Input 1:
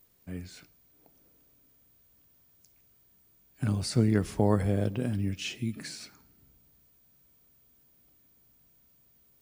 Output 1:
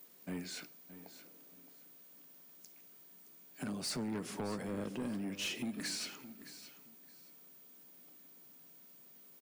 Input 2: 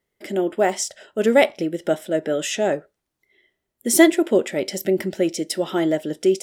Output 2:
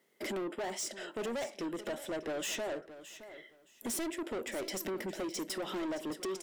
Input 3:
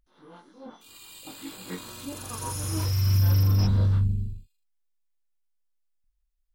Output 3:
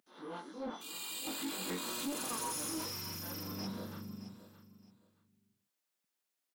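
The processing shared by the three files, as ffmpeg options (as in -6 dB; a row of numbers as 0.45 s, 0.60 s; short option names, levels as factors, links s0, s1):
-af "acompressor=threshold=0.0141:ratio=3,highpass=f=190:w=0.5412,highpass=f=190:w=1.3066,asoftclip=type=tanh:threshold=0.01,aecho=1:1:619|1238:0.2|0.0419,volume=2"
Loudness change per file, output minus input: -11.0 LU, -17.0 LU, -15.0 LU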